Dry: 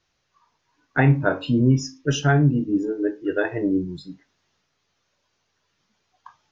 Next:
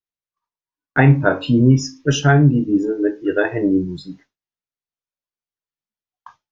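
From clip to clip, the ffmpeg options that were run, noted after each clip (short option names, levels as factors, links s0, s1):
-af "agate=range=0.0224:threshold=0.00562:ratio=3:detection=peak,volume=1.78"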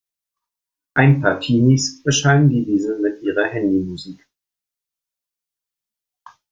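-af "highshelf=f=3600:g=11,volume=0.891"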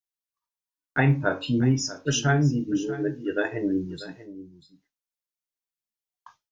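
-af "aecho=1:1:641:0.168,volume=0.398"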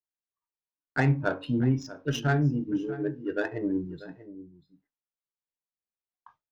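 -af "adynamicsmooth=sensitivity=1.5:basefreq=1900,volume=0.708"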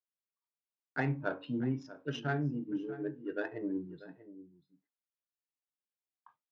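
-af "highpass=150,lowpass=3900,volume=0.447"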